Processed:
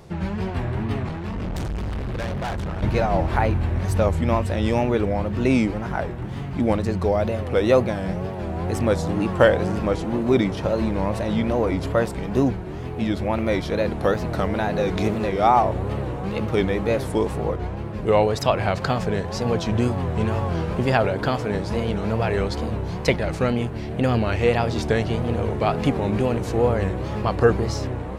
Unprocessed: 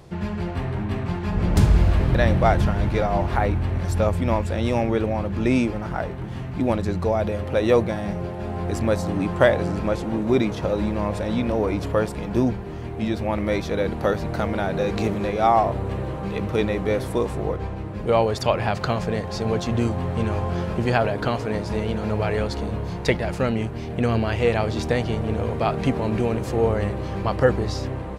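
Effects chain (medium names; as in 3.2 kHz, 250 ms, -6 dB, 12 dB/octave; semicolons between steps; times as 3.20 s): 1.09–2.82 s: valve stage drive 26 dB, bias 0.45; wow and flutter 140 cents; trim +1 dB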